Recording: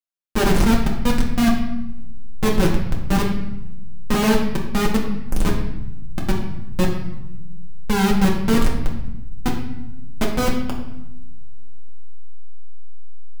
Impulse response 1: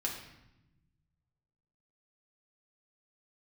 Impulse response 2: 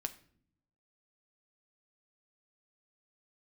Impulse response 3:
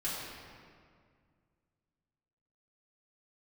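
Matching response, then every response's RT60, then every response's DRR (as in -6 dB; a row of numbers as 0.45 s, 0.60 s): 1; 0.90 s, 0.60 s, 2.0 s; -2.5 dB, 8.0 dB, -9.5 dB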